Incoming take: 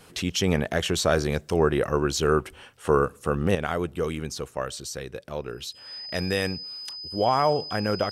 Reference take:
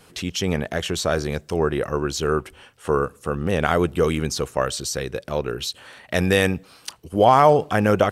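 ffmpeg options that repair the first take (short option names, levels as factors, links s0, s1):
-af "bandreject=f=5000:w=30,asetnsamples=n=441:p=0,asendcmd='3.55 volume volume 8dB',volume=1"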